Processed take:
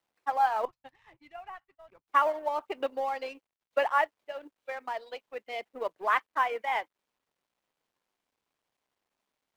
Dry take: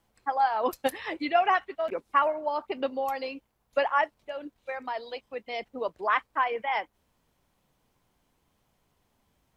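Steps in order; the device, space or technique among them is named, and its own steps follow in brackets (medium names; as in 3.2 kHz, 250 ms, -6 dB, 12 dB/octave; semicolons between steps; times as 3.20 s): phone line with mismatched companding (band-pass 340–3400 Hz; companding laws mixed up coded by A); 0.65–2.08 s: FFT filter 130 Hz 0 dB, 230 Hz -18 dB, 470 Hz -28 dB, 910 Hz -17 dB, 1.4 kHz -21 dB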